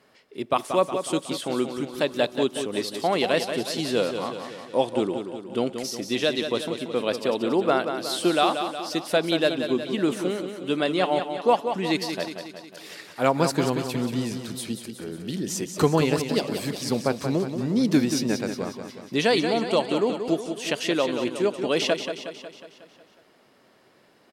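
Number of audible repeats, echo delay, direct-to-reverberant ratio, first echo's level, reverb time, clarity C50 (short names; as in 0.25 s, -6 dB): 6, 0.182 s, none, -8.0 dB, none, none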